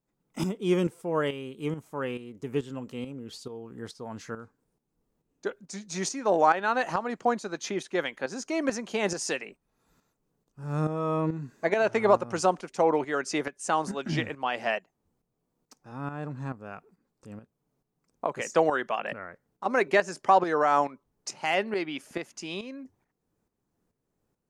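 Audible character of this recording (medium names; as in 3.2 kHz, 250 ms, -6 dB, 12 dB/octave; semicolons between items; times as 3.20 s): tremolo saw up 2.3 Hz, depth 65%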